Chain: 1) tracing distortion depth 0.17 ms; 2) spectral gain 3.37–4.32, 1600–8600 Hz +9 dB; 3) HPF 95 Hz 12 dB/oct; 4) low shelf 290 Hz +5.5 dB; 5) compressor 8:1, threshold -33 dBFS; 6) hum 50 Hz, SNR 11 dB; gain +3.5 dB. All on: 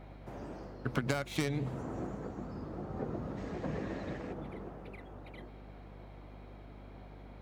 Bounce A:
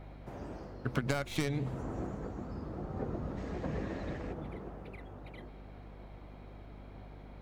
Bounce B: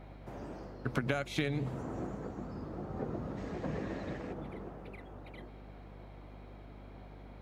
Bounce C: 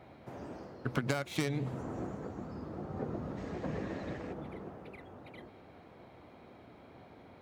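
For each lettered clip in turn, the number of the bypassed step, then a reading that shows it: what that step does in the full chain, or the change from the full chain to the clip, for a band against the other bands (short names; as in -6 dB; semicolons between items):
3, crest factor change -2.0 dB; 1, 8 kHz band -5.0 dB; 6, momentary loudness spread change +3 LU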